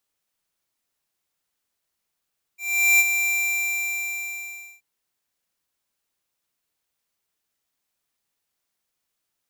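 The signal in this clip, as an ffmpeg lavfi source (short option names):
-f lavfi -i "aevalsrc='0.178*(2*lt(mod(2360*t,1),0.5)-1)':d=2.23:s=44100,afade=t=in:d=0.414,afade=t=out:st=0.414:d=0.039:silence=0.422,afade=t=out:st=0.69:d=1.54"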